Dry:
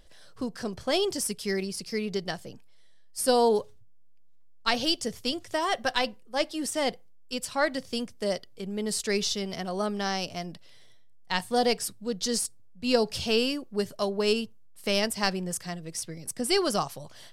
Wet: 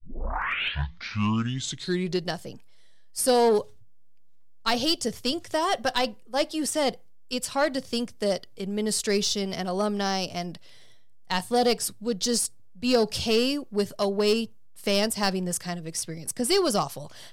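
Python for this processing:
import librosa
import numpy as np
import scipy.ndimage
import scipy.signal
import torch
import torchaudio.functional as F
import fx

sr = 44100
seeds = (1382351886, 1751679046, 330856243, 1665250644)

p1 = fx.tape_start_head(x, sr, length_s=2.34)
p2 = fx.dynamic_eq(p1, sr, hz=2000.0, q=1.2, threshold_db=-39.0, ratio=4.0, max_db=-4)
p3 = 10.0 ** (-22.5 / 20.0) * (np.abs((p2 / 10.0 ** (-22.5 / 20.0) + 3.0) % 4.0 - 2.0) - 1.0)
p4 = p2 + F.gain(torch.from_numpy(p3), -9.0).numpy()
y = F.gain(torch.from_numpy(p4), 1.0).numpy()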